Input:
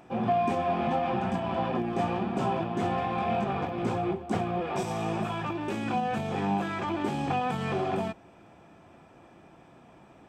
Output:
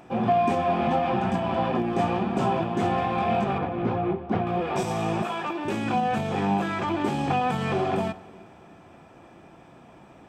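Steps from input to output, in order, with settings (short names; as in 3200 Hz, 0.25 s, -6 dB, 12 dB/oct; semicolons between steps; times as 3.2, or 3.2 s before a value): 3.58–4.47 air absorption 300 m; 5.22–5.65 HPF 290 Hz; reverb RT60 2.3 s, pre-delay 46 ms, DRR 18 dB; gain +4 dB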